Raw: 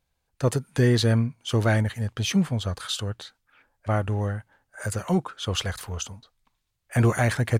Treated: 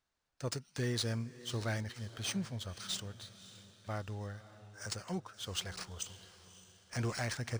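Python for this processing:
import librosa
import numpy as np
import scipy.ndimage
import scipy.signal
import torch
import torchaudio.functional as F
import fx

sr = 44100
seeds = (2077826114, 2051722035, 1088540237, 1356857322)

y = librosa.effects.preemphasis(x, coef=0.8, zi=[0.0])
y = fx.echo_diffused(y, sr, ms=573, feedback_pct=42, wet_db=-15.5)
y = np.interp(np.arange(len(y)), np.arange(len(y))[::3], y[::3])
y = y * 10.0 ** (-2.0 / 20.0)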